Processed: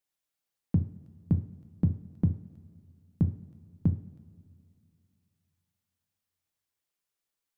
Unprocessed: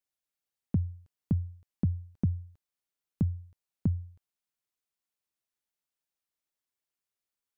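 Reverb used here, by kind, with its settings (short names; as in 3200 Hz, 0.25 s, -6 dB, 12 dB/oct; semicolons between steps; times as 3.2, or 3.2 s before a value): two-slope reverb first 0.43 s, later 2.6 s, from -18 dB, DRR 6.5 dB; gain +2 dB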